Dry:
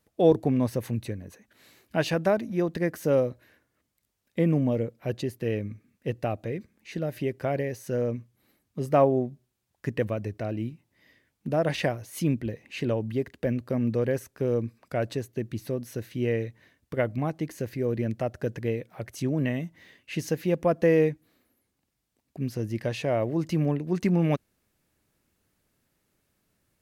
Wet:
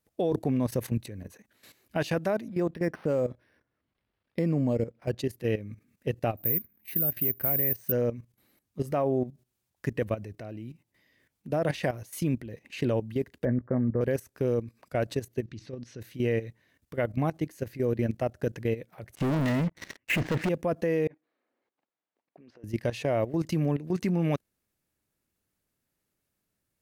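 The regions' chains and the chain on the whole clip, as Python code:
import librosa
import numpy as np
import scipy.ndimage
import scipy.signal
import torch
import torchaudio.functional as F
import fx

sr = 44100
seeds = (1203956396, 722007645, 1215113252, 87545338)

y = fx.chain(x, sr, fx.lowpass(hz=7900.0, slope=24),
    fx.resample_linear(factor=6), at=(2.48, 5.18))
y = fx.chain(y, sr, fx.lowpass(hz=2400.0, slope=6),
    fx.peak_eq(hz=510.0, db=-5.0, octaves=1.2),
    fx.resample_bad(factor=3, down='filtered', up='zero_stuff'), at=(6.37, 7.92))
y = fx.chain(y, sr, fx.steep_lowpass(hz=2000.0, slope=72),
    fx.doubler(ms=16.0, db=-10), at=(13.45, 14.01))
y = fx.chain(y, sr, fx.lowpass(hz=5800.0, slope=24),
    fx.peak_eq(hz=730.0, db=-5.0, octaves=0.96), at=(15.44, 16.01))
y = fx.chain(y, sr, fx.lowpass(hz=2300.0, slope=24),
    fx.leveller(passes=5), at=(19.15, 20.49))
y = fx.chain(y, sr, fx.highpass(hz=520.0, slope=12),
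    fx.over_compress(threshold_db=-45.0, ratio=-1.0),
    fx.spacing_loss(db_at_10k=40), at=(21.07, 22.64))
y = fx.high_shelf(y, sr, hz=7100.0, db=4.5)
y = fx.level_steps(y, sr, step_db=14)
y = F.gain(torch.from_numpy(y), 2.5).numpy()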